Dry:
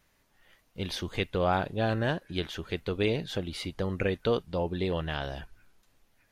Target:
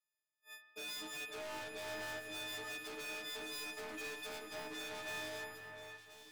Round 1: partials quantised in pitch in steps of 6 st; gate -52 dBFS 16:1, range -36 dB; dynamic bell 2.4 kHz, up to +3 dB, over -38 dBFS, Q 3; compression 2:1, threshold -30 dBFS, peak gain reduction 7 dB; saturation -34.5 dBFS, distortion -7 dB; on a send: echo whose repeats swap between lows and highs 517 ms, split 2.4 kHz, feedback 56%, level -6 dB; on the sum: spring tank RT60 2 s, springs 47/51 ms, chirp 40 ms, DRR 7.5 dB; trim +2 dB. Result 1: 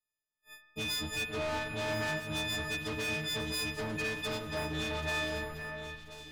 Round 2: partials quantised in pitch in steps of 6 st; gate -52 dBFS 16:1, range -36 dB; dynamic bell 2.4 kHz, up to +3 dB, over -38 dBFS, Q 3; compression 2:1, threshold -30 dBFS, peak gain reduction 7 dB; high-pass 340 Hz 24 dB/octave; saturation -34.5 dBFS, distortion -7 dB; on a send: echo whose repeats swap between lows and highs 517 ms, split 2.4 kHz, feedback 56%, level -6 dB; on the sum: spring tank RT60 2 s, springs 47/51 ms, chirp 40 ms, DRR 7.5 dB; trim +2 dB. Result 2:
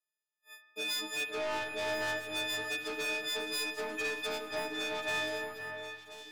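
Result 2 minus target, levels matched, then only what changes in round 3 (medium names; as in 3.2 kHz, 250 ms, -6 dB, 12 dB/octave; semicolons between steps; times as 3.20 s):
saturation: distortion -5 dB
change: saturation -46.5 dBFS, distortion -2 dB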